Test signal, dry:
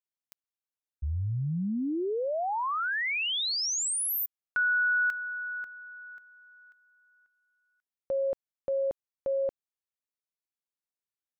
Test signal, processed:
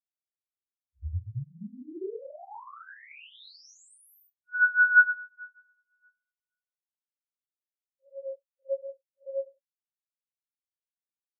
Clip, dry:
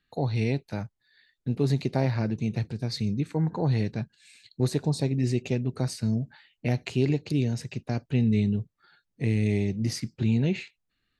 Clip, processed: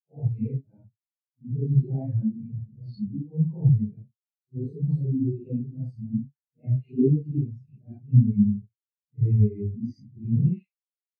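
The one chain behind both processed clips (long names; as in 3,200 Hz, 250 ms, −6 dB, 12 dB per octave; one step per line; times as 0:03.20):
random phases in long frames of 200 ms
every bin expanded away from the loudest bin 2.5 to 1
level +6.5 dB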